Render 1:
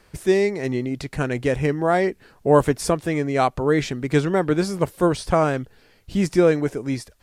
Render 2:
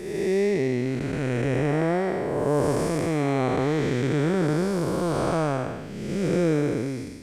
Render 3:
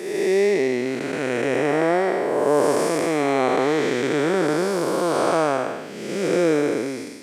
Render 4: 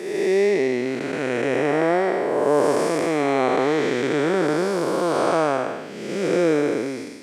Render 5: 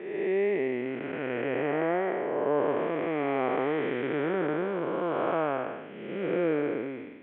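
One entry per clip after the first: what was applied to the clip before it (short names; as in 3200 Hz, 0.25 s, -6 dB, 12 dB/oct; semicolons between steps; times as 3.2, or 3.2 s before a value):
time blur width 0.45 s; gain +2 dB
HPF 340 Hz 12 dB/oct; gain +6.5 dB
high shelf 8600 Hz -7.5 dB
steep low-pass 3200 Hz 72 dB/oct; gain -8 dB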